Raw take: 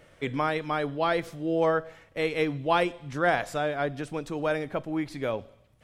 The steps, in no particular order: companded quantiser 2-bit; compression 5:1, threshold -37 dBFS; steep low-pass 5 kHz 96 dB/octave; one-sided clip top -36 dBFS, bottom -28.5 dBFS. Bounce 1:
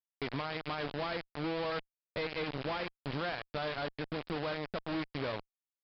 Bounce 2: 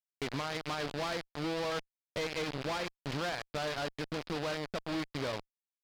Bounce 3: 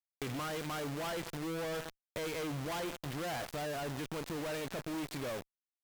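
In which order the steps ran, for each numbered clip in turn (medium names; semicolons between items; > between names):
compression > companded quantiser > one-sided clip > steep low-pass; compression > companded quantiser > steep low-pass > one-sided clip; steep low-pass > companded quantiser > one-sided clip > compression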